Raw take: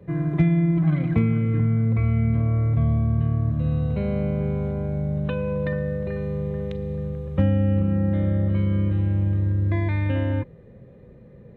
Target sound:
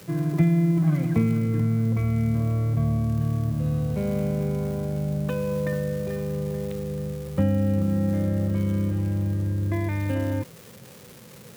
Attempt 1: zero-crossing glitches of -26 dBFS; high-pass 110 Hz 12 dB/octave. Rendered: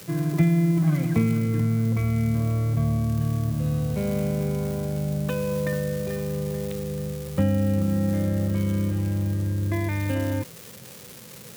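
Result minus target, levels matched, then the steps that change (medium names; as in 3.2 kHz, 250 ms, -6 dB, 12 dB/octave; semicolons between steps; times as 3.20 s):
4 kHz band +4.5 dB
add after high-pass: treble shelf 2.3 kHz -6.5 dB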